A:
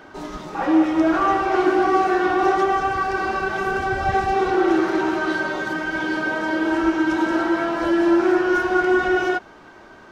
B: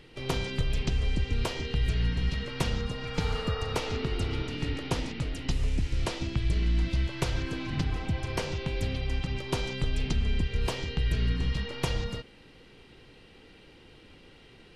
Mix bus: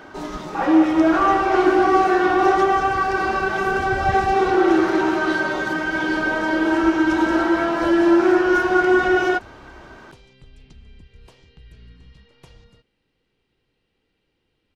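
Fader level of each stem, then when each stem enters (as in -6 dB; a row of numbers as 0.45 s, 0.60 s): +2.0 dB, -18.5 dB; 0.00 s, 0.60 s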